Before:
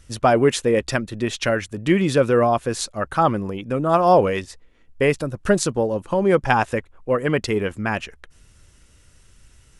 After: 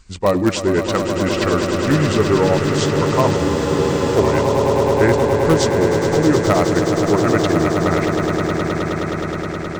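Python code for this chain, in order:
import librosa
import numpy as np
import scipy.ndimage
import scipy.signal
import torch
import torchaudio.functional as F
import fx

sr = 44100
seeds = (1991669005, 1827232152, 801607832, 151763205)

p1 = fx.pitch_heads(x, sr, semitones=-4.0)
p2 = (np.mod(10.0 ** (8.0 / 20.0) * p1 + 1.0, 2.0) - 1.0) / 10.0 ** (8.0 / 20.0)
p3 = p1 + (p2 * 10.0 ** (-12.0 / 20.0))
p4 = fx.echo_swell(p3, sr, ms=105, loudest=8, wet_db=-9.5)
y = fx.spec_freeze(p4, sr, seeds[0], at_s=3.39, hold_s=0.77)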